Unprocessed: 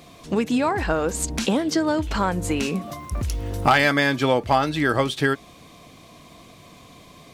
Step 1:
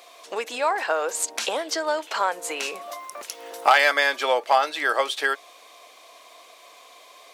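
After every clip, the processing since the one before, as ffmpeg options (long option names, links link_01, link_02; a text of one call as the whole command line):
ffmpeg -i in.wav -af "highpass=frequency=510:width=0.5412,highpass=frequency=510:width=1.3066,volume=1dB" out.wav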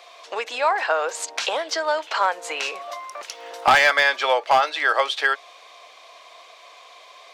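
ffmpeg -i in.wav -filter_complex "[0:a]acrossover=split=450 6300:gain=0.224 1 0.158[link_01][link_02][link_03];[link_01][link_02][link_03]amix=inputs=3:normalize=0,asoftclip=type=hard:threshold=-12.5dB,volume=3.5dB" out.wav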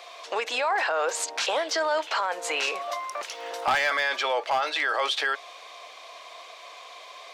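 ffmpeg -i in.wav -af "alimiter=limit=-19.5dB:level=0:latency=1:release=15,volume=2dB" out.wav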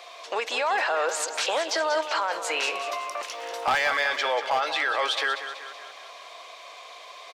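ffmpeg -i in.wav -af "aecho=1:1:189|378|567|756|945|1134:0.299|0.155|0.0807|0.042|0.0218|0.0114" out.wav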